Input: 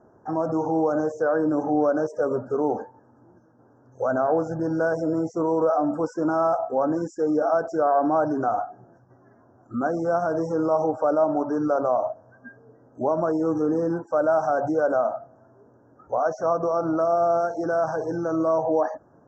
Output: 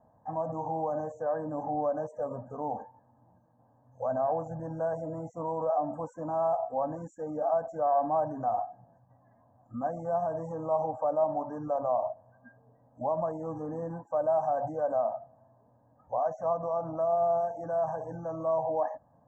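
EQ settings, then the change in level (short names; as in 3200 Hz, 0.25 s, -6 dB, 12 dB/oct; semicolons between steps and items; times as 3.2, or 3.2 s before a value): Butterworth band-stop 3600 Hz, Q 0.99; fixed phaser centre 1400 Hz, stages 6; -4.0 dB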